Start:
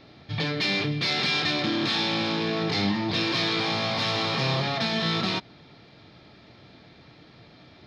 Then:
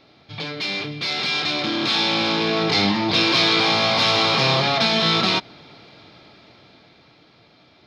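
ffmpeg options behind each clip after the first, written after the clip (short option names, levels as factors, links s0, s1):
-af "lowshelf=f=250:g=-8.5,bandreject=f=1800:w=12,dynaudnorm=f=220:g=17:m=2.99"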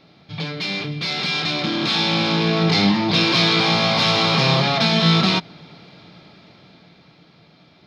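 -af "equalizer=f=170:t=o:w=0.49:g=11"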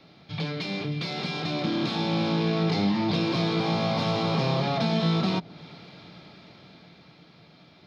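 -filter_complex "[0:a]acrossover=split=210|930[s0][s1][s2];[s0]acompressor=threshold=0.0501:ratio=4[s3];[s1]acompressor=threshold=0.0631:ratio=4[s4];[s2]acompressor=threshold=0.0224:ratio=4[s5];[s3][s4][s5]amix=inputs=3:normalize=0,volume=0.794"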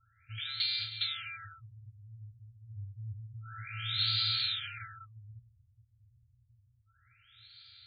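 -af "highshelf=f=3100:t=q:w=1.5:g=9.5,afftfilt=real='re*(1-between(b*sr/4096,120,1300))':imag='im*(1-between(b*sr/4096,120,1300))':win_size=4096:overlap=0.75,afftfilt=real='re*lt(b*sr/1024,270*pow(4900/270,0.5+0.5*sin(2*PI*0.29*pts/sr)))':imag='im*lt(b*sr/1024,270*pow(4900/270,0.5+0.5*sin(2*PI*0.29*pts/sr)))':win_size=1024:overlap=0.75,volume=0.708"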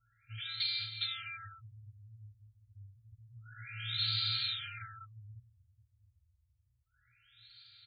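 -filter_complex "[0:a]asplit=2[s0][s1];[s1]adelay=3.7,afreqshift=-0.27[s2];[s0][s2]amix=inputs=2:normalize=1"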